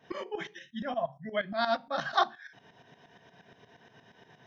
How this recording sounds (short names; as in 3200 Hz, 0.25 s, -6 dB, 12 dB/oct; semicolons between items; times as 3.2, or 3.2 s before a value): tremolo saw up 8.5 Hz, depth 75%